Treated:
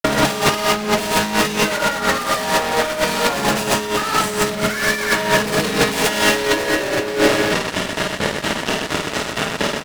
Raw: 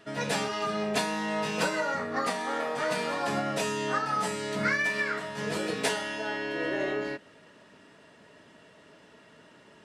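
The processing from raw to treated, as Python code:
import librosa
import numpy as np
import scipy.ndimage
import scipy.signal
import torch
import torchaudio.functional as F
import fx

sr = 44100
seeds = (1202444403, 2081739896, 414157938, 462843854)

y = fx.granulator(x, sr, seeds[0], grain_ms=200.0, per_s=4.3, spray_ms=100.0, spread_st=0)
y = fx.fuzz(y, sr, gain_db=49.0, gate_db=-56.0)
y = fx.echo_multitap(y, sr, ms=(47, 52, 126, 271, 325, 388), db=(-9.5, -4.0, -4.5, -14.5, -18.0, -12.0))
y = fx.over_compress(y, sr, threshold_db=-18.0, ratio=-0.5)
y = y * librosa.db_to_amplitude(1.5)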